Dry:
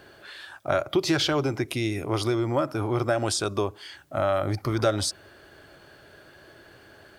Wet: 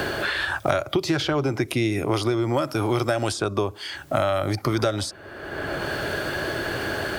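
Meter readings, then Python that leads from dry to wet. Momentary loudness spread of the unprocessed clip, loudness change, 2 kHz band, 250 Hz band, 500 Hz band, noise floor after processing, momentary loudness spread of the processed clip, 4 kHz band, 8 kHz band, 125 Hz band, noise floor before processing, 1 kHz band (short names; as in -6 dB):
14 LU, +1.0 dB, +8.0 dB, +3.0 dB, +2.5 dB, -43 dBFS, 6 LU, +1.5 dB, -2.0 dB, +2.5 dB, -53 dBFS, +3.5 dB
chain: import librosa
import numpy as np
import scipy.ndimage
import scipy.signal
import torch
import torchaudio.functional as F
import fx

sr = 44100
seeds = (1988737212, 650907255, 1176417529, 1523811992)

y = fx.band_squash(x, sr, depth_pct=100)
y = F.gain(torch.from_numpy(y), 2.0).numpy()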